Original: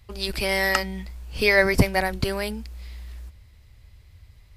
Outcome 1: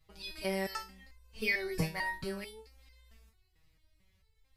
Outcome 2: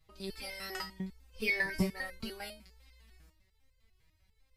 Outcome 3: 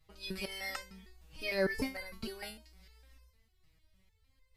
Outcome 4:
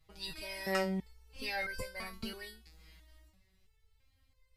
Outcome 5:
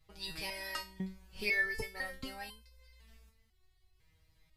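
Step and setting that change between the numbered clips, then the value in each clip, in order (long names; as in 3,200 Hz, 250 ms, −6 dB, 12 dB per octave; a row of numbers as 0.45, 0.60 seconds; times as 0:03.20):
step-sequenced resonator, speed: 4.5, 10, 6.6, 3, 2 Hertz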